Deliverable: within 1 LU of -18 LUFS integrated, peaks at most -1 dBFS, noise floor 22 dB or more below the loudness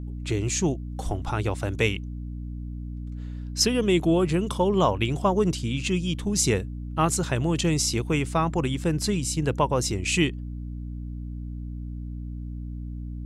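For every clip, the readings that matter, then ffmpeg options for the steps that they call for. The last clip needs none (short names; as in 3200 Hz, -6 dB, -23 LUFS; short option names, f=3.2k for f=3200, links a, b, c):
hum 60 Hz; harmonics up to 300 Hz; hum level -31 dBFS; loudness -25.0 LUFS; peak -8.5 dBFS; loudness target -18.0 LUFS
-> -af "bandreject=f=60:t=h:w=4,bandreject=f=120:t=h:w=4,bandreject=f=180:t=h:w=4,bandreject=f=240:t=h:w=4,bandreject=f=300:t=h:w=4"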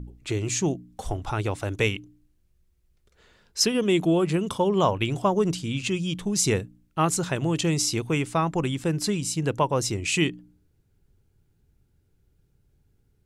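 hum none; loudness -25.5 LUFS; peak -9.0 dBFS; loudness target -18.0 LUFS
-> -af "volume=7.5dB"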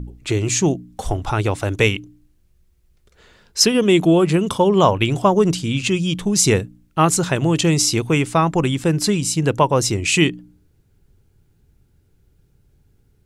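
loudness -18.0 LUFS; peak -1.5 dBFS; noise floor -60 dBFS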